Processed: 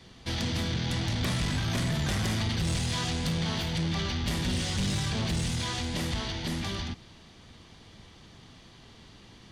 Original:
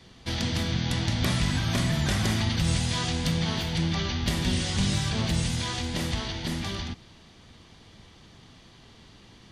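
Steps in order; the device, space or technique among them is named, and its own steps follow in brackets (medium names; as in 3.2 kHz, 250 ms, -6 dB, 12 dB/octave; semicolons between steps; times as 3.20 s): saturation between pre-emphasis and de-emphasis (treble shelf 11 kHz +7.5 dB; saturation -23.5 dBFS, distortion -13 dB; treble shelf 11 kHz -7.5 dB)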